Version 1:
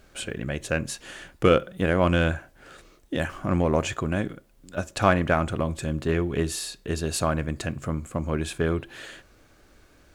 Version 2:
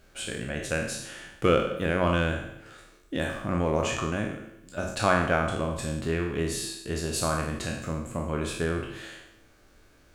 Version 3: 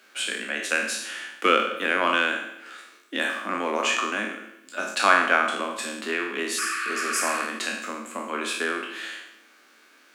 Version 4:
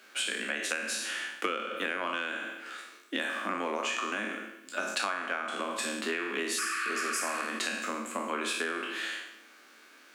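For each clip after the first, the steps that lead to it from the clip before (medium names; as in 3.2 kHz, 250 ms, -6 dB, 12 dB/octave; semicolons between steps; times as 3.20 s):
spectral sustain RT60 0.75 s; feedback comb 110 Hz, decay 1.2 s, harmonics all, mix 50%; de-hum 47.25 Hz, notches 27; trim +1.5 dB
FFT filter 620 Hz 0 dB, 1.2 kHz +9 dB, 2.5 kHz +11 dB, 6.9 kHz +6 dB; spectral replace 6.61–7.38 s, 1.1–4.8 kHz after; steep high-pass 210 Hz 72 dB/octave; trim -1.5 dB
compression 16:1, threshold -28 dBFS, peak gain reduction 17 dB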